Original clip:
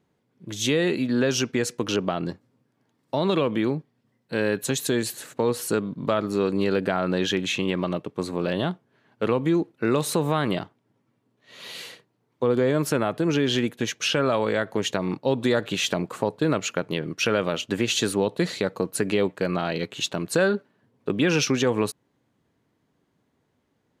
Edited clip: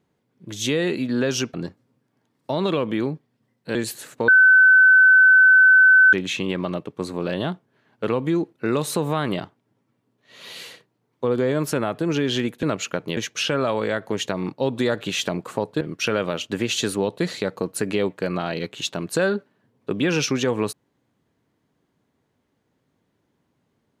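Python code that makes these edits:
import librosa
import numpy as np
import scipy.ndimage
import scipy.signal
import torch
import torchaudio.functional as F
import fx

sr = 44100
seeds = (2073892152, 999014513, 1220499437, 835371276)

y = fx.edit(x, sr, fx.cut(start_s=1.54, length_s=0.64),
    fx.cut(start_s=4.39, length_s=0.55),
    fx.bleep(start_s=5.47, length_s=1.85, hz=1520.0, db=-9.0),
    fx.move(start_s=16.46, length_s=0.54, to_s=13.82), tone=tone)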